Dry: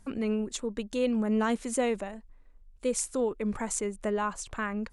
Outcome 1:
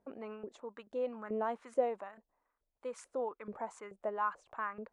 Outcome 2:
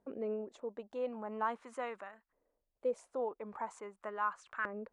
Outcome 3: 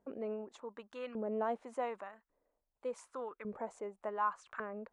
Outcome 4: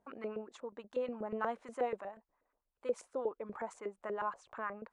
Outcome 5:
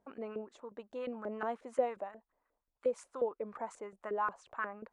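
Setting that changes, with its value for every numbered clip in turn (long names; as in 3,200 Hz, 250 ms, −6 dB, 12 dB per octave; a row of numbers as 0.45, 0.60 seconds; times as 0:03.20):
auto-filter band-pass, speed: 2.3, 0.43, 0.87, 8.3, 5.6 Hertz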